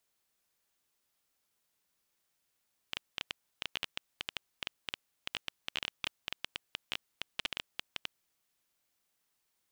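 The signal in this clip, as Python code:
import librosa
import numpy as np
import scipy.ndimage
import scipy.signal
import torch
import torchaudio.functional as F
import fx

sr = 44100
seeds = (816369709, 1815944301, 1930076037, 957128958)

y = fx.geiger_clicks(sr, seeds[0], length_s=5.87, per_s=9.2, level_db=-16.5)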